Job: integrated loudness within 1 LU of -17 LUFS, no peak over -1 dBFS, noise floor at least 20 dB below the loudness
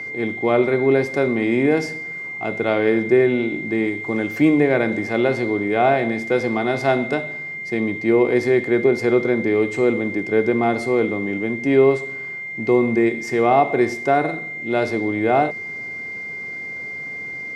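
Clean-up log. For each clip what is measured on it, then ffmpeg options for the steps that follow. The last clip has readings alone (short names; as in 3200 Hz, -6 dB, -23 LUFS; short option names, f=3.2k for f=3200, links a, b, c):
steady tone 2100 Hz; tone level -28 dBFS; loudness -20.0 LUFS; peak -4.0 dBFS; loudness target -17.0 LUFS
-> -af "bandreject=f=2.1k:w=30"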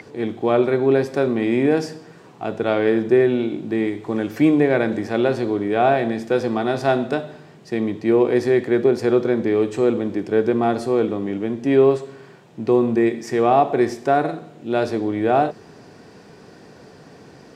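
steady tone none; loudness -20.0 LUFS; peak -4.5 dBFS; loudness target -17.0 LUFS
-> -af "volume=3dB"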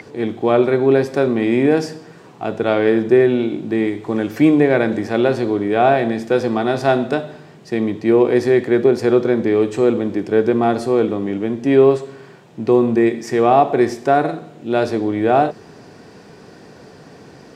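loudness -17.0 LUFS; peak -1.5 dBFS; noise floor -43 dBFS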